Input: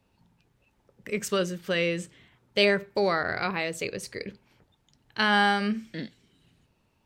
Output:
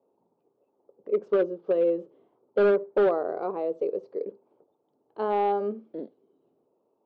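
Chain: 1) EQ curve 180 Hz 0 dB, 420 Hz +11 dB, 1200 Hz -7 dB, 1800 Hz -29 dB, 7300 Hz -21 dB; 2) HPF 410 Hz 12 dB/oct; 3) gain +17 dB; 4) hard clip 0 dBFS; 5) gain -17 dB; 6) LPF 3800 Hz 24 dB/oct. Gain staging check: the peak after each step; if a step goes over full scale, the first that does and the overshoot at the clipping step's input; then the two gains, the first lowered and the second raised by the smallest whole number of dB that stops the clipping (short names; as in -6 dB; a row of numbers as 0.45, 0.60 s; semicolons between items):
-7.5, -10.0, +7.0, 0.0, -17.0, -16.5 dBFS; step 3, 7.0 dB; step 3 +10 dB, step 5 -10 dB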